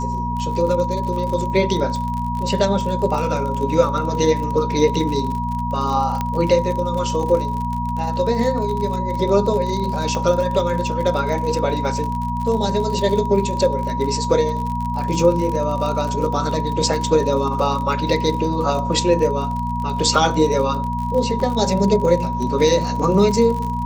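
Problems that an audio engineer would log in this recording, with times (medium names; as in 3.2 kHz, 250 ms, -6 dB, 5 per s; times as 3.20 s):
crackle 47 per s -25 dBFS
hum 60 Hz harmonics 4 -25 dBFS
whine 960 Hz -24 dBFS
6.21 s: pop -9 dBFS
10.15 s: pop -12 dBFS
21.40 s: dropout 2.5 ms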